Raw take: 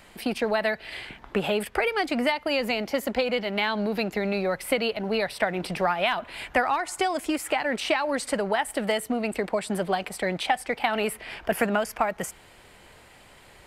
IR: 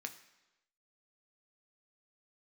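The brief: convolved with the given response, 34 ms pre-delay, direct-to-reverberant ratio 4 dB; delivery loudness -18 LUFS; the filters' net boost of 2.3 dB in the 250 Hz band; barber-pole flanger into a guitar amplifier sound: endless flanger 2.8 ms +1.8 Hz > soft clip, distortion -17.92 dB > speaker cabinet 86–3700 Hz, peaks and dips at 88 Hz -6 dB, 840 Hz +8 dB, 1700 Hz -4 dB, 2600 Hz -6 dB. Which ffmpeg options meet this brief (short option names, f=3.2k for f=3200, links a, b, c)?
-filter_complex "[0:a]equalizer=f=250:t=o:g=3,asplit=2[a][b];[1:a]atrim=start_sample=2205,adelay=34[c];[b][c]afir=irnorm=-1:irlink=0,volume=-2.5dB[d];[a][d]amix=inputs=2:normalize=0,asplit=2[e][f];[f]adelay=2.8,afreqshift=1.8[g];[e][g]amix=inputs=2:normalize=1,asoftclip=threshold=-18.5dB,highpass=86,equalizer=f=88:t=q:w=4:g=-6,equalizer=f=840:t=q:w=4:g=8,equalizer=f=1.7k:t=q:w=4:g=-4,equalizer=f=2.6k:t=q:w=4:g=-6,lowpass=f=3.7k:w=0.5412,lowpass=f=3.7k:w=1.3066,volume=10.5dB"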